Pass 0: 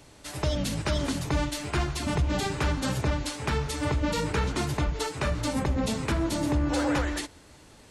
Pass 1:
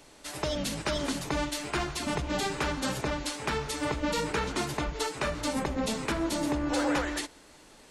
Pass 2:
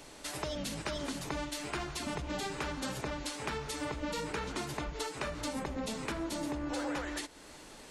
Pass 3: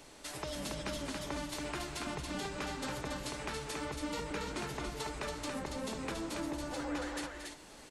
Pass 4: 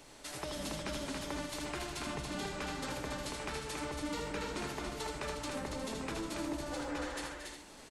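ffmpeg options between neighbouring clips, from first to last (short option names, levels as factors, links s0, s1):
-af "equalizer=f=89:w=0.97:g=-14.5"
-af "acompressor=threshold=0.00794:ratio=2.5,volume=1.41"
-af "aecho=1:1:227.4|279.9:0.316|0.631,volume=0.668"
-af "aecho=1:1:80:0.531,volume=0.891"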